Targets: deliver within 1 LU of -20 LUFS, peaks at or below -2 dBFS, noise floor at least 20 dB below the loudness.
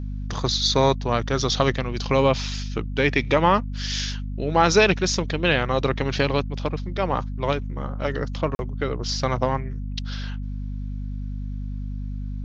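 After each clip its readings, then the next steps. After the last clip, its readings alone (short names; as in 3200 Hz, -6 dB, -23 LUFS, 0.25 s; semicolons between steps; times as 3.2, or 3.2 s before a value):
dropouts 1; longest dropout 41 ms; hum 50 Hz; harmonics up to 250 Hz; hum level -27 dBFS; loudness -24.0 LUFS; peak -3.0 dBFS; loudness target -20.0 LUFS
-> interpolate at 8.55, 41 ms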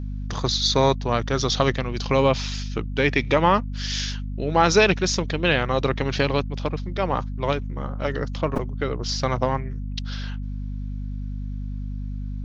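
dropouts 0; hum 50 Hz; harmonics up to 250 Hz; hum level -27 dBFS
-> notches 50/100/150/200/250 Hz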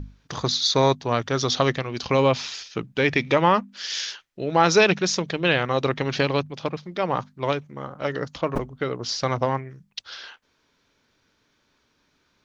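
hum none; loudness -23.5 LUFS; peak -3.0 dBFS; loudness target -20.0 LUFS
-> gain +3.5 dB; limiter -2 dBFS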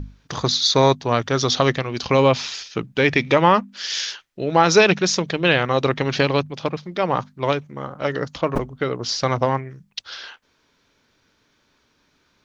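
loudness -20.0 LUFS; peak -2.0 dBFS; noise floor -65 dBFS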